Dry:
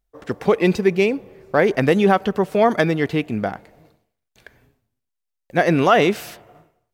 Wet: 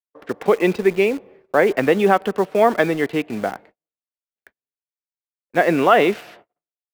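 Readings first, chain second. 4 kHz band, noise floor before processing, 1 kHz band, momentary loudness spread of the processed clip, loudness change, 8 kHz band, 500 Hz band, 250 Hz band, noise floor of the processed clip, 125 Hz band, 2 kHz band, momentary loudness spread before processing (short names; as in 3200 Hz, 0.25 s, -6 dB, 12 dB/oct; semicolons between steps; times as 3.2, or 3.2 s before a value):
-2.0 dB, -80 dBFS, +1.0 dB, 11 LU, 0.0 dB, n/a, +1.0 dB, -2.0 dB, under -85 dBFS, -6.5 dB, +0.5 dB, 12 LU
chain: gate -43 dBFS, range -43 dB; three-band isolator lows -13 dB, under 220 Hz, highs -16 dB, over 3700 Hz; in parallel at -7 dB: bit-crush 5-bit; on the sum: gain -2 dB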